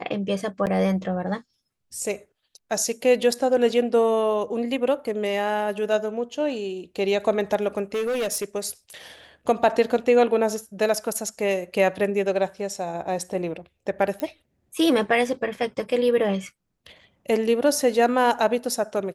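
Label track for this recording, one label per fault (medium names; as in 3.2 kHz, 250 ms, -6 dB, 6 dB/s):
0.660000	0.670000	dropout 8.7 ms
7.940000	8.450000	clipped -22 dBFS
14.200000	14.200000	pop -14 dBFS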